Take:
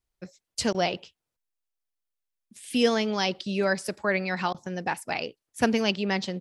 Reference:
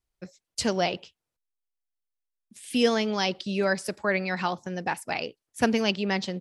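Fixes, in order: interpolate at 0.73/4.53 s, 13 ms

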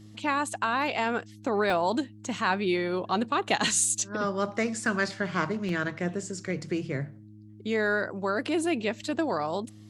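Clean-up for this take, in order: de-hum 105.8 Hz, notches 3; interpolate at 1.70/3.84/4.85/5.69 s, 1.5 ms

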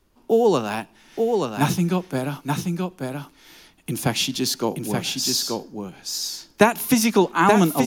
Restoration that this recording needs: expander -45 dBFS, range -21 dB; inverse comb 879 ms -4 dB

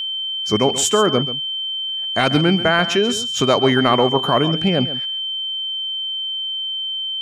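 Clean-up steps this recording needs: band-stop 3.1 kHz, Q 30; inverse comb 136 ms -13.5 dB

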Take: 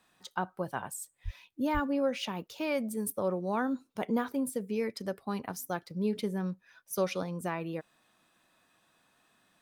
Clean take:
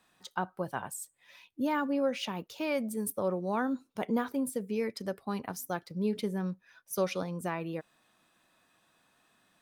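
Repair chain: 1.24–1.36 s: high-pass 140 Hz 24 dB/octave; 1.73–1.85 s: high-pass 140 Hz 24 dB/octave

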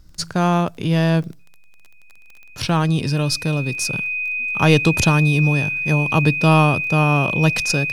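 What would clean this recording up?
de-click; band-stop 2.5 kHz, Q 30

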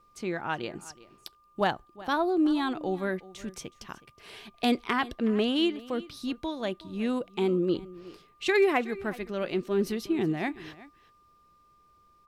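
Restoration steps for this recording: clip repair -15 dBFS; band-stop 1.2 kHz, Q 30; inverse comb 370 ms -19 dB

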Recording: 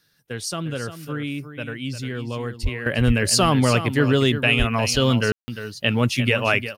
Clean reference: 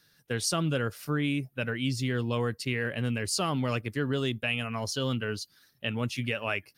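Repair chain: de-plosive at 2.62/3.06/4.58 s; room tone fill 5.32–5.48 s; inverse comb 352 ms -11 dB; trim 0 dB, from 2.86 s -11 dB

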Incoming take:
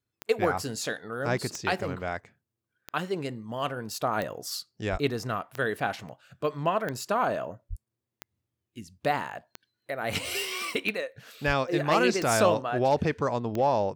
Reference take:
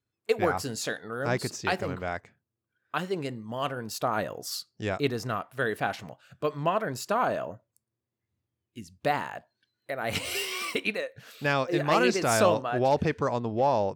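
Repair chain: de-click; 4.91–5.03 s: high-pass 140 Hz 24 dB/octave; 7.69–7.81 s: high-pass 140 Hz 24 dB/octave; 11.46–11.58 s: high-pass 140 Hz 24 dB/octave

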